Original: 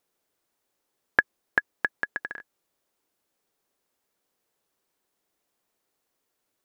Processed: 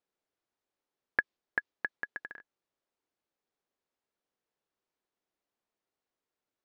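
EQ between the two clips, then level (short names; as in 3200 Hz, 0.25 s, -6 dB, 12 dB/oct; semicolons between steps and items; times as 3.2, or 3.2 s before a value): air absorption 96 m; dynamic EQ 3800 Hz, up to +7 dB, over -41 dBFS, Q 0.85; -9.0 dB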